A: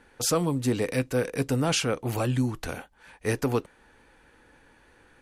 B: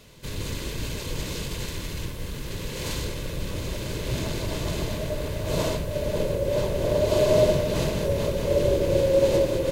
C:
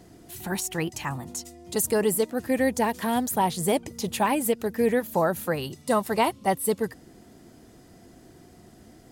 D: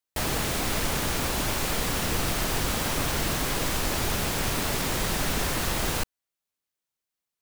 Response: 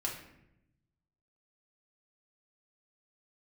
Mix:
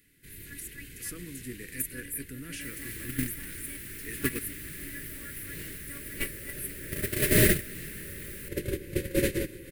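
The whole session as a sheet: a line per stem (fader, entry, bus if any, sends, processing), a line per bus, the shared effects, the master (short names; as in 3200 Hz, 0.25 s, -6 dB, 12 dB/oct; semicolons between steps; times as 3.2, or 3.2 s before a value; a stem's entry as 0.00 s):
+2.0 dB, 0.80 s, no send, dry
+2.0 dB, 0.00 s, no send, dry
+2.5 dB, 0.00 s, no send, bell 360 Hz -11 dB 1.2 oct; robotiser 283 Hz
-2.0 dB, 2.45 s, no send, dry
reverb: off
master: gate -16 dBFS, range -20 dB; EQ curve 120 Hz 0 dB, 370 Hz +3 dB, 810 Hz -28 dB, 1800 Hz +12 dB, 3400 Hz -1 dB, 6600 Hz -2 dB, 9700 Hz +13 dB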